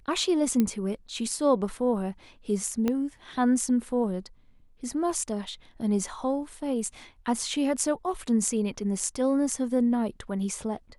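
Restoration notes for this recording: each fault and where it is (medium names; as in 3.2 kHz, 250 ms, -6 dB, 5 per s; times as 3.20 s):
0.60 s: pop -12 dBFS
2.88 s: pop -14 dBFS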